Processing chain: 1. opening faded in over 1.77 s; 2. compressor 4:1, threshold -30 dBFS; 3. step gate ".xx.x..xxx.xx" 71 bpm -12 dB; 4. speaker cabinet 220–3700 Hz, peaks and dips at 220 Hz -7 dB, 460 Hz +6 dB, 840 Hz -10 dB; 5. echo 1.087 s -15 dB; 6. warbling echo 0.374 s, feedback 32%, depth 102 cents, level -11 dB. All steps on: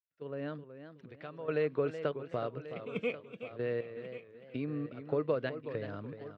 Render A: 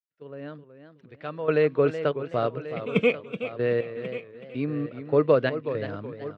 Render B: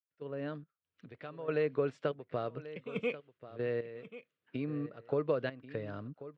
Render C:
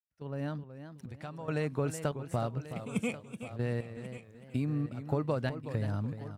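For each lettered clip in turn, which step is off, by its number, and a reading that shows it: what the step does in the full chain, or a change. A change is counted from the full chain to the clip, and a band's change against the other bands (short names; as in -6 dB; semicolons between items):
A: 2, mean gain reduction 7.5 dB; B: 6, momentary loudness spread change +1 LU; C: 4, momentary loudness spread change -2 LU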